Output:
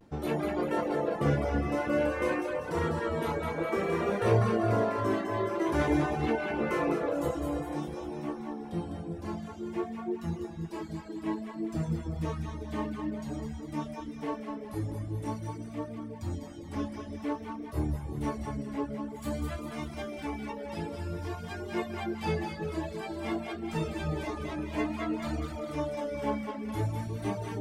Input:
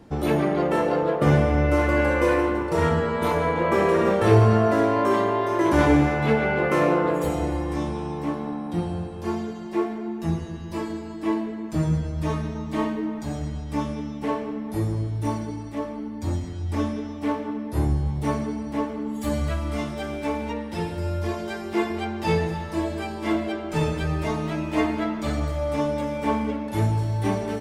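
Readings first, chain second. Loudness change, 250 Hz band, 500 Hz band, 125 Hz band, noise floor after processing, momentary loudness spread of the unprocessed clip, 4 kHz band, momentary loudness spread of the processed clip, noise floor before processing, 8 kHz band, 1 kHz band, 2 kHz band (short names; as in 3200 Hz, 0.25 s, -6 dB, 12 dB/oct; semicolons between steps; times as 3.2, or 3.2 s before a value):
-8.5 dB, -8.0 dB, -8.0 dB, -9.5 dB, -42 dBFS, 10 LU, -8.0 dB, 10 LU, -34 dBFS, -7.5 dB, -8.5 dB, -8.5 dB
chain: split-band echo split 610 Hz, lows 0.322 s, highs 0.201 s, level -4 dB; vibrato 0.52 Hz 43 cents; reverb removal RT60 0.8 s; gain -8 dB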